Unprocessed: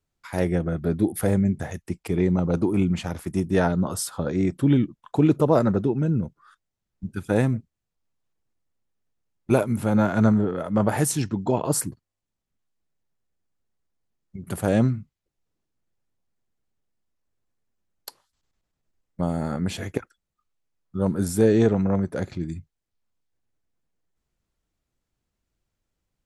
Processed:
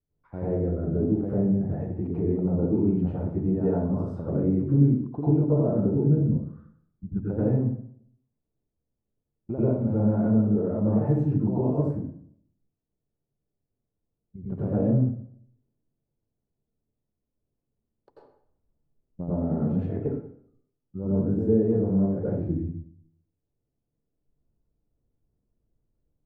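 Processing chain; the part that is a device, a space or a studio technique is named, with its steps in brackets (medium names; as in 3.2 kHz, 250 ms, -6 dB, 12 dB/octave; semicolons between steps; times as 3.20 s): television next door (compression 4:1, threshold -24 dBFS, peak gain reduction 9.5 dB; low-pass 520 Hz 12 dB/octave; reverberation RT60 0.60 s, pre-delay 85 ms, DRR -9.5 dB); trim -5 dB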